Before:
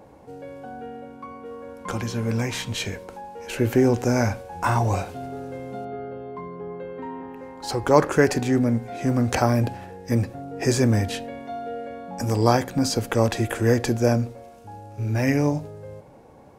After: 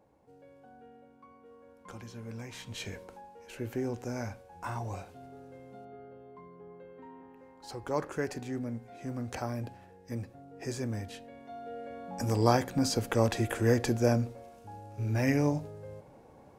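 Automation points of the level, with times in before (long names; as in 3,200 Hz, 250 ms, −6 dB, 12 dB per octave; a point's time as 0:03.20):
0:02.46 −17.5 dB
0:02.99 −8.5 dB
0:03.48 −15.5 dB
0:11.22 −15.5 dB
0:12.06 −6 dB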